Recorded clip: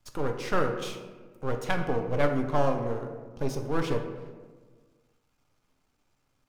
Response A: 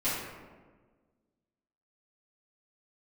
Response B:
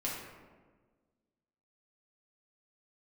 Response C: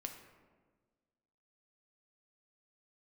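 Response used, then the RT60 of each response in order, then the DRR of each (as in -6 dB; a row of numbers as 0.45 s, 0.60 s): C; 1.4 s, 1.4 s, 1.5 s; -14.5 dB, -6.5 dB, 3.5 dB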